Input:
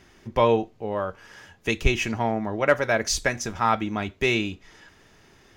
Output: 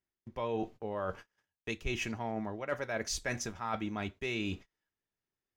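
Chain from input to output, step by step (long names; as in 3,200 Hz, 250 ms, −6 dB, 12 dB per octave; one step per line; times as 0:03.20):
noise gate −41 dBFS, range −39 dB
reversed playback
downward compressor 6 to 1, threshold −33 dBFS, peak gain reduction 18.5 dB
reversed playback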